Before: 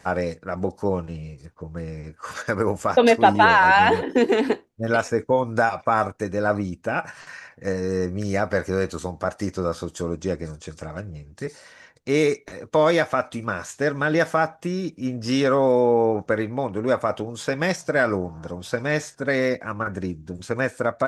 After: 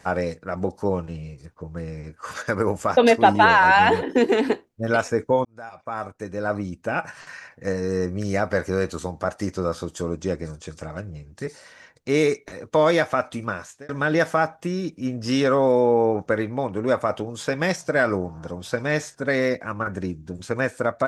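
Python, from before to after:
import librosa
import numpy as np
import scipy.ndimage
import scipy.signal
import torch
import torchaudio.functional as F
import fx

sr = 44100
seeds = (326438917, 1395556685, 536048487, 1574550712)

y = fx.edit(x, sr, fx.fade_in_span(start_s=5.45, length_s=1.55),
    fx.fade_out_span(start_s=13.45, length_s=0.44), tone=tone)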